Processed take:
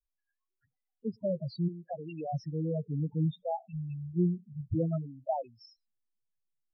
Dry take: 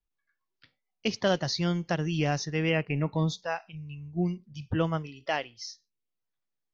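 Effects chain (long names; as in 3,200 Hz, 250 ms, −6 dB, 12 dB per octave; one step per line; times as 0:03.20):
0:01.68–0:02.34: high-pass filter 1,000 Hz 6 dB per octave
speech leveller within 4 dB 0.5 s
low-pass filter 1,800 Hz 6 dB per octave
spectral peaks only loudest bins 4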